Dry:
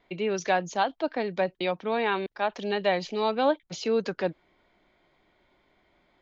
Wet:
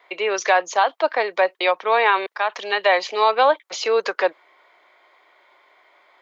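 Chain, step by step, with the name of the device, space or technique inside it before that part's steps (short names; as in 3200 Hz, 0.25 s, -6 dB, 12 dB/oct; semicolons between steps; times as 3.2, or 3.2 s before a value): laptop speaker (HPF 450 Hz 24 dB/oct; bell 1100 Hz +7.5 dB 0.54 oct; bell 2000 Hz +4.5 dB 0.55 oct; limiter -15.5 dBFS, peak gain reduction 6 dB); 2.37–2.86 bell 540 Hz -5 dB 1.6 oct; gain +9 dB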